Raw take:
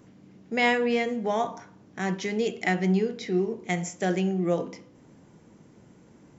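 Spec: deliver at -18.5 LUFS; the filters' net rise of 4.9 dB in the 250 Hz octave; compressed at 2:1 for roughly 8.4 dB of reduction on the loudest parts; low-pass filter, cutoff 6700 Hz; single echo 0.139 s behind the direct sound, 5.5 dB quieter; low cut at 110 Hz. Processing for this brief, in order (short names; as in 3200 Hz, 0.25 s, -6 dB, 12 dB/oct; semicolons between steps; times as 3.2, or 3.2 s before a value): HPF 110 Hz; LPF 6700 Hz; bell 250 Hz +7.5 dB; compressor 2:1, threshold -32 dBFS; echo 0.139 s -5.5 dB; gain +12 dB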